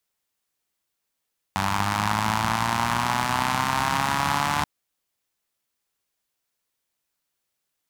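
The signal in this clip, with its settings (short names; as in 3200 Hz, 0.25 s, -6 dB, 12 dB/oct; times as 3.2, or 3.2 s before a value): four-cylinder engine model, changing speed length 3.08 s, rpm 2900, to 4400, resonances 100/180/910 Hz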